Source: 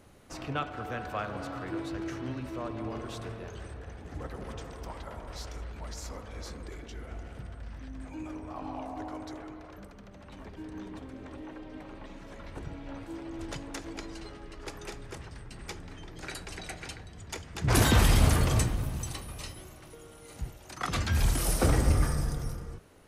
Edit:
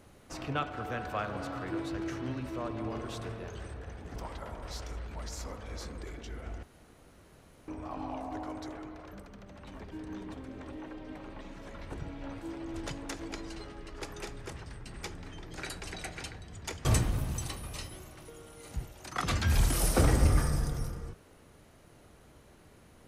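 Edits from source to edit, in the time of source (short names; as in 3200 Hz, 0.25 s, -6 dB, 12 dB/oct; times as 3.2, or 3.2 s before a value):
4.16–4.81 cut
7.28–8.33 room tone
17.5–18.5 cut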